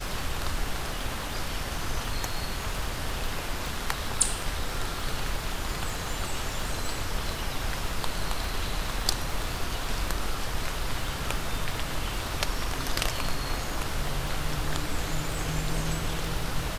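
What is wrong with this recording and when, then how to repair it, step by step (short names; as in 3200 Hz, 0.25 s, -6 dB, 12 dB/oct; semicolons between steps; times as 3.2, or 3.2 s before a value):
crackle 38/s -32 dBFS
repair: de-click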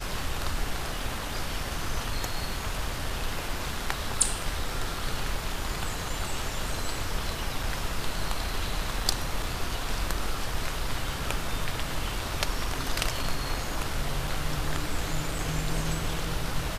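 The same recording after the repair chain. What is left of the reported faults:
none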